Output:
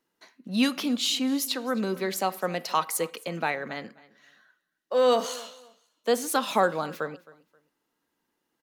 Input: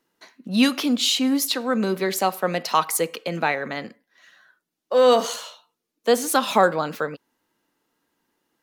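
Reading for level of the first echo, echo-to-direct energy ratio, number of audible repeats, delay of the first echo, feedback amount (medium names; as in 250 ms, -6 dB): -21.0 dB, -20.5 dB, 2, 265 ms, 26%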